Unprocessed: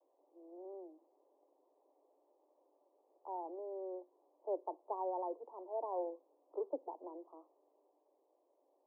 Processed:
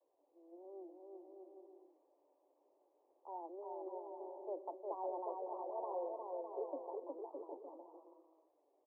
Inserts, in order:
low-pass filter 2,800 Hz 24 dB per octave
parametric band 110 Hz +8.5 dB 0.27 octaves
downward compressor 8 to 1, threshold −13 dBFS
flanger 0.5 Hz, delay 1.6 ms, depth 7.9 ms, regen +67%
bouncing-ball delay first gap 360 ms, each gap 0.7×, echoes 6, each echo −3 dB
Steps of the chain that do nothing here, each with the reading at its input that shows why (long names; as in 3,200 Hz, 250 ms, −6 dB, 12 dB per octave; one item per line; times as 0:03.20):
low-pass filter 2,800 Hz: nothing at its input above 1,100 Hz
parametric band 110 Hz: nothing at its input below 270 Hz
downward compressor, threshold −13 dBFS: peak of its input −27.5 dBFS